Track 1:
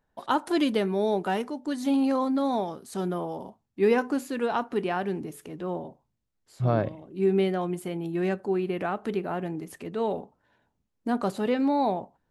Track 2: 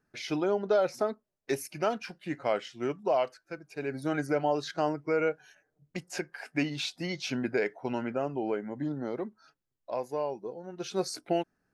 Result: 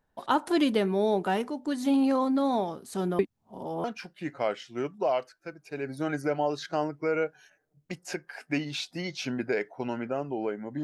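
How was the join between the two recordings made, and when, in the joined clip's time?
track 1
0:03.19–0:03.84: reverse
0:03.84: continue with track 2 from 0:01.89

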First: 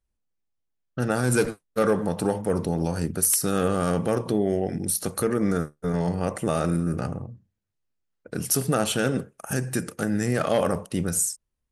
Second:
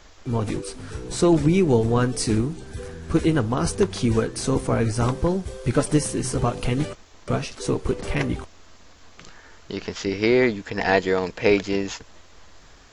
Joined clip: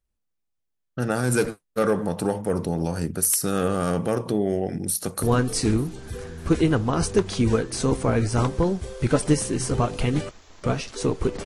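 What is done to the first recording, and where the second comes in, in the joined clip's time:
first
0:04.88–0:05.23: delay throw 300 ms, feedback 55%, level −14.5 dB
0:05.23: continue with second from 0:01.87

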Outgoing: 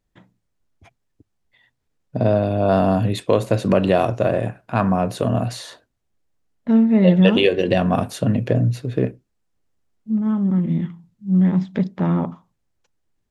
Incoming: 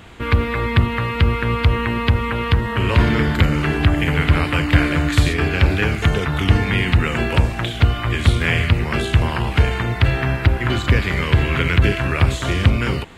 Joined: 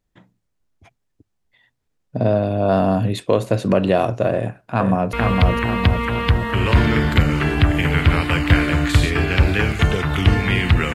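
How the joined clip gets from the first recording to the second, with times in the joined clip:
outgoing
0:04.34–0:05.13: delay throw 460 ms, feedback 50%, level −3 dB
0:05.13: continue with incoming from 0:01.36

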